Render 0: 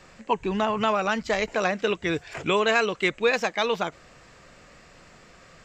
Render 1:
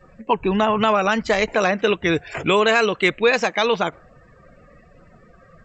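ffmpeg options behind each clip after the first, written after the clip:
ffmpeg -i in.wav -filter_complex "[0:a]afftdn=noise_reduction=23:noise_floor=-47,asplit=2[link_01][link_02];[link_02]alimiter=limit=-16dB:level=0:latency=1,volume=0dB[link_03];[link_01][link_03]amix=inputs=2:normalize=0,volume=1dB" out.wav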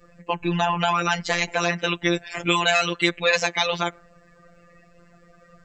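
ffmpeg -i in.wav -af "highshelf=frequency=2500:gain=10,afftfilt=real='hypot(re,im)*cos(PI*b)':imag='0':win_size=1024:overlap=0.75,volume=-1.5dB" out.wav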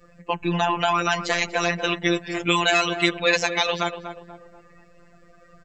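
ffmpeg -i in.wav -filter_complex "[0:a]asplit=2[link_01][link_02];[link_02]adelay=241,lowpass=frequency=1200:poles=1,volume=-8dB,asplit=2[link_03][link_04];[link_04]adelay=241,lowpass=frequency=1200:poles=1,volume=0.47,asplit=2[link_05][link_06];[link_06]adelay=241,lowpass=frequency=1200:poles=1,volume=0.47,asplit=2[link_07][link_08];[link_08]adelay=241,lowpass=frequency=1200:poles=1,volume=0.47,asplit=2[link_09][link_10];[link_10]adelay=241,lowpass=frequency=1200:poles=1,volume=0.47[link_11];[link_01][link_03][link_05][link_07][link_09][link_11]amix=inputs=6:normalize=0" out.wav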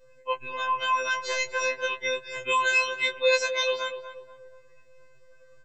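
ffmpeg -i in.wav -af "afftfilt=real='re*2.45*eq(mod(b,6),0)':imag='im*2.45*eq(mod(b,6),0)':win_size=2048:overlap=0.75,volume=-4dB" out.wav

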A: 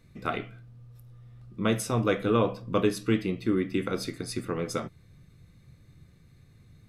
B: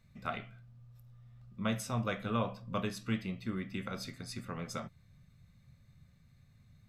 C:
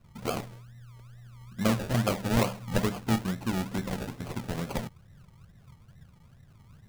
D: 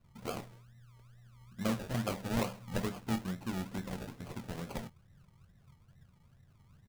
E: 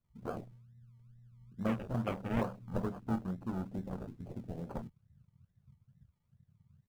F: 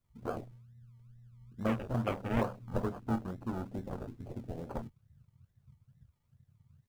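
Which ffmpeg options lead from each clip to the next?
ffmpeg -i in.wav -af "superequalizer=6b=0.251:7b=0.355:16b=0.562,volume=-6.5dB" out.wav
ffmpeg -i in.wav -af "acrusher=samples=33:mix=1:aa=0.000001:lfo=1:lforange=19.8:lforate=2.3,volume=7.5dB" out.wav
ffmpeg -i in.wav -filter_complex "[0:a]asplit=2[link_01][link_02];[link_02]adelay=22,volume=-12dB[link_03];[link_01][link_03]amix=inputs=2:normalize=0,volume=-8dB" out.wav
ffmpeg -i in.wav -af "afwtdn=0.00708" out.wav
ffmpeg -i in.wav -af "equalizer=frequency=180:width_type=o:width=0.34:gain=-8.5,volume=3dB" out.wav

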